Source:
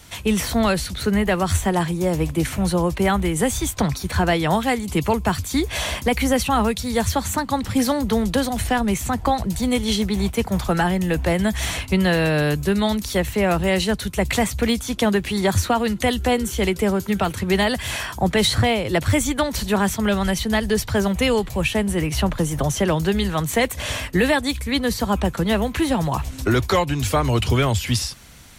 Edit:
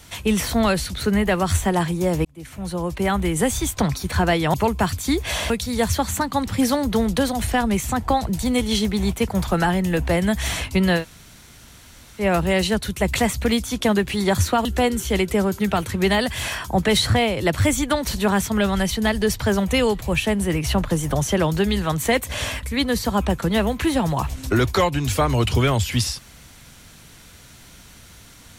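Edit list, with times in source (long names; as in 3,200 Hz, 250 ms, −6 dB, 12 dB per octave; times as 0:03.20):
0:02.25–0:03.32: fade in
0:04.54–0:05.00: remove
0:05.96–0:06.67: remove
0:12.17–0:13.38: fill with room tone, crossfade 0.10 s
0:15.82–0:16.13: remove
0:24.11–0:24.58: remove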